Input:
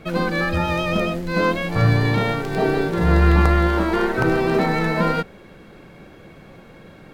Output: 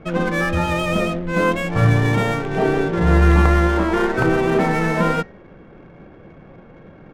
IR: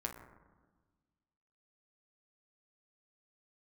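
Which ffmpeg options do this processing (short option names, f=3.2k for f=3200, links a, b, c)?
-af "bandreject=f=208.2:t=h:w=4,bandreject=f=416.4:t=h:w=4,bandreject=f=624.6:t=h:w=4,bandreject=f=832.8:t=h:w=4,bandreject=f=1.041k:t=h:w=4,bandreject=f=1.2492k:t=h:w=4,bandreject=f=1.4574k:t=h:w=4,bandreject=f=1.6656k:t=h:w=4,bandreject=f=1.8738k:t=h:w=4,bandreject=f=2.082k:t=h:w=4,bandreject=f=2.2902k:t=h:w=4,aresample=8000,aresample=44100,adynamicsmooth=sensitivity=7:basefreq=1.4k,volume=1.5dB"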